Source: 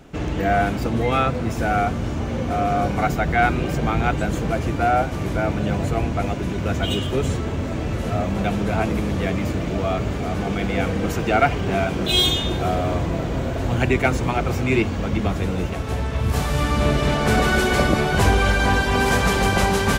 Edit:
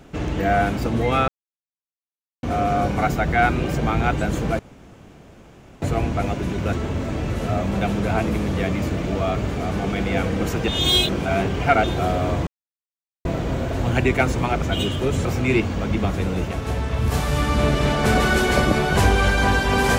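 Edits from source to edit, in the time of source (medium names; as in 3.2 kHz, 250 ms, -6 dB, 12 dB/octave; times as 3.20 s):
1.28–2.43 s: mute
4.59–5.82 s: room tone
6.73–7.36 s: move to 14.47 s
11.31–12.47 s: reverse
13.10 s: insert silence 0.78 s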